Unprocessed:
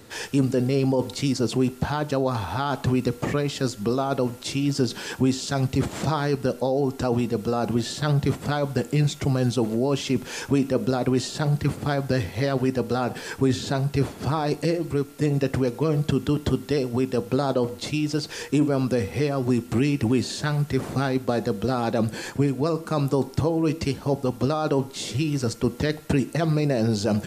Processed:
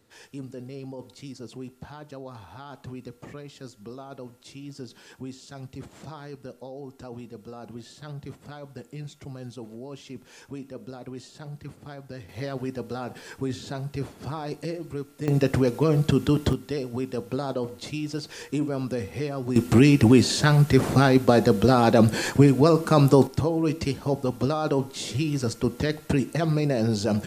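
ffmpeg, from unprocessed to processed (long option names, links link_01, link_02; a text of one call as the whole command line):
ffmpeg -i in.wav -af "asetnsamples=nb_out_samples=441:pad=0,asendcmd='12.29 volume volume -8.5dB;15.28 volume volume 1.5dB;16.53 volume volume -6dB;19.56 volume volume 6dB;23.27 volume volume -1.5dB',volume=-16.5dB" out.wav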